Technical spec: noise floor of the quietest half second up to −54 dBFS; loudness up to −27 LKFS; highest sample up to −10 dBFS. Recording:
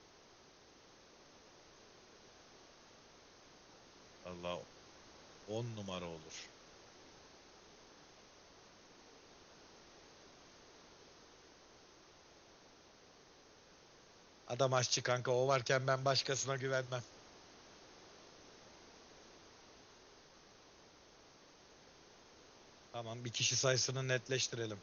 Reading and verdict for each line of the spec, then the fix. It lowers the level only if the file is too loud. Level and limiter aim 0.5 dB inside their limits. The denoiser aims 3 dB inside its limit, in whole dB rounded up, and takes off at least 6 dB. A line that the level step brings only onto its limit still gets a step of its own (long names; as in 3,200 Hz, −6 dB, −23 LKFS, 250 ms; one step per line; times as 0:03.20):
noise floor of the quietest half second −63 dBFS: in spec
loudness −37.0 LKFS: in spec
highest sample −19.0 dBFS: in spec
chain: no processing needed